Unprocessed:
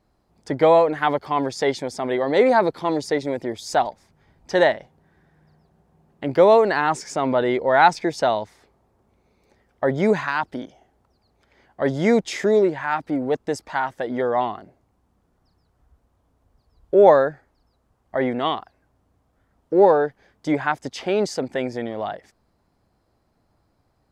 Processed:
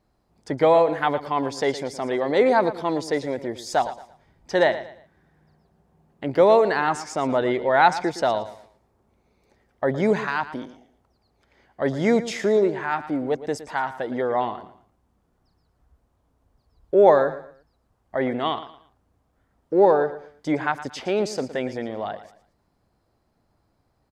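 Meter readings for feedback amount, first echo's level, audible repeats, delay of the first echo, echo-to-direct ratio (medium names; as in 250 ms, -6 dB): 31%, -14.0 dB, 3, 114 ms, -13.5 dB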